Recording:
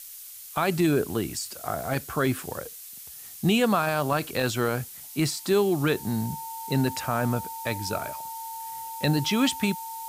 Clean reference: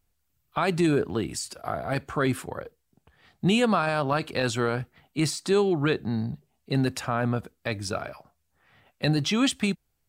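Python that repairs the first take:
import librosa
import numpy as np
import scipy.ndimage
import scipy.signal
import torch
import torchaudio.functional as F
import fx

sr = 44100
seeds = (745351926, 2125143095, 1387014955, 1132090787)

y = fx.notch(x, sr, hz=900.0, q=30.0)
y = fx.noise_reduce(y, sr, print_start_s=2.85, print_end_s=3.35, reduce_db=30.0)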